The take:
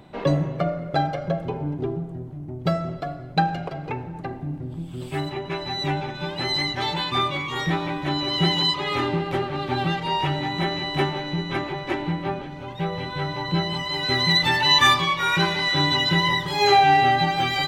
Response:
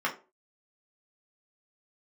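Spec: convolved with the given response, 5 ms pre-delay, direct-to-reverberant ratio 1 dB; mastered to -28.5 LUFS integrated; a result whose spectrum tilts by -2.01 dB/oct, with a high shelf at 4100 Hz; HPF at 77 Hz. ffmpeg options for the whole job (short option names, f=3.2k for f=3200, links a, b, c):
-filter_complex "[0:a]highpass=77,highshelf=f=4.1k:g=3.5,asplit=2[a][b];[1:a]atrim=start_sample=2205,adelay=5[c];[b][c]afir=irnorm=-1:irlink=0,volume=-11dB[d];[a][d]amix=inputs=2:normalize=0,volume=-8dB"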